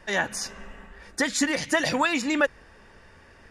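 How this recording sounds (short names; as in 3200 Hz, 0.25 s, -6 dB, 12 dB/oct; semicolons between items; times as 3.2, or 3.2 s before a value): noise floor -53 dBFS; spectral tilt -2.5 dB/oct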